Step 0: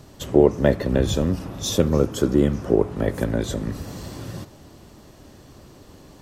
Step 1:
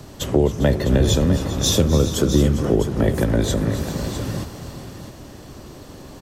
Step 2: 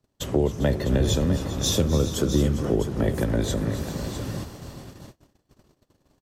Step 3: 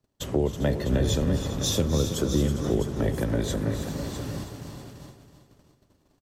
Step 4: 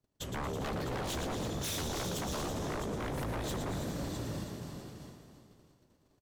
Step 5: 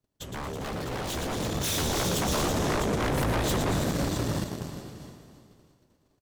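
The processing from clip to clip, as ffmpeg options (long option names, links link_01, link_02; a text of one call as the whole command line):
ffmpeg -i in.wav -filter_complex "[0:a]acrossover=split=150|3000[link_01][link_02][link_03];[link_02]acompressor=threshold=-25dB:ratio=3[link_04];[link_01][link_04][link_03]amix=inputs=3:normalize=0,aecho=1:1:255|279|399|412|655:0.133|0.168|0.178|0.119|0.299,volume=6.5dB" out.wav
ffmpeg -i in.wav -af "agate=range=-31dB:threshold=-35dB:ratio=16:detection=peak,volume=-5dB" out.wav
ffmpeg -i in.wav -af "aecho=1:1:324|648|972|1296:0.316|0.12|0.0457|0.0174,volume=-2.5dB" out.wav
ffmpeg -i in.wav -filter_complex "[0:a]asplit=8[link_01][link_02][link_03][link_04][link_05][link_06][link_07][link_08];[link_02]adelay=114,afreqshift=32,volume=-7.5dB[link_09];[link_03]adelay=228,afreqshift=64,volume=-12.4dB[link_10];[link_04]adelay=342,afreqshift=96,volume=-17.3dB[link_11];[link_05]adelay=456,afreqshift=128,volume=-22.1dB[link_12];[link_06]adelay=570,afreqshift=160,volume=-27dB[link_13];[link_07]adelay=684,afreqshift=192,volume=-31.9dB[link_14];[link_08]adelay=798,afreqshift=224,volume=-36.8dB[link_15];[link_01][link_09][link_10][link_11][link_12][link_13][link_14][link_15]amix=inputs=8:normalize=0,aeval=exprs='0.0562*(abs(mod(val(0)/0.0562+3,4)-2)-1)':channel_layout=same,volume=-6dB" out.wav
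ffmpeg -i in.wav -filter_complex "[0:a]dynaudnorm=framelen=610:gausssize=5:maxgain=5dB,asplit=2[link_01][link_02];[link_02]acrusher=bits=4:mix=0:aa=0.5,volume=-3.5dB[link_03];[link_01][link_03]amix=inputs=2:normalize=0" out.wav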